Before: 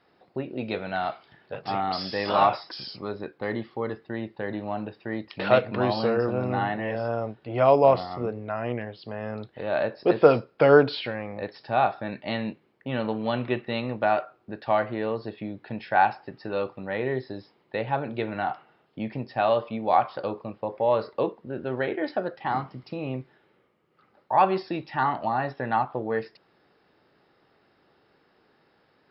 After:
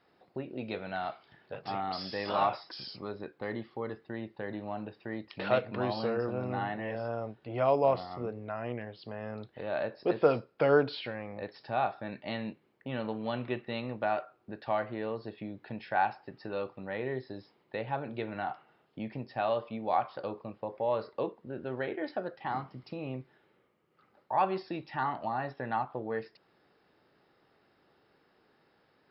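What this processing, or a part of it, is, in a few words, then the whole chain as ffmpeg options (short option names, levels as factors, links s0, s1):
parallel compression: -filter_complex "[0:a]asplit=2[s0][s1];[s1]acompressor=threshold=0.0141:ratio=6,volume=0.668[s2];[s0][s2]amix=inputs=2:normalize=0,volume=0.376"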